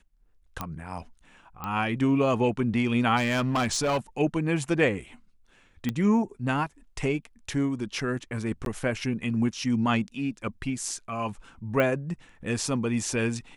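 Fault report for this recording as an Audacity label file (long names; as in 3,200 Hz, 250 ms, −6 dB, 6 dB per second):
0.610000	0.610000	click −16 dBFS
1.640000	1.640000	click −19 dBFS
3.160000	3.980000	clipping −21.5 dBFS
5.890000	5.890000	click −15 dBFS
8.650000	8.660000	drop-out 12 ms
11.800000	11.800000	click −14 dBFS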